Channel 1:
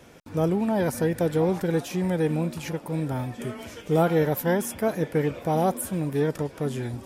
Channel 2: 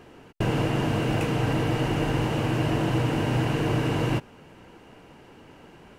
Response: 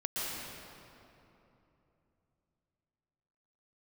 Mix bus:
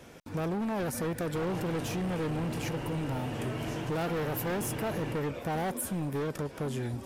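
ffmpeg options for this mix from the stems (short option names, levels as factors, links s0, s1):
-filter_complex "[0:a]volume=0.944[s0];[1:a]adelay=950,volume=0.335[s1];[s0][s1]amix=inputs=2:normalize=0,volume=20,asoftclip=hard,volume=0.0501,acompressor=threshold=0.0316:ratio=6"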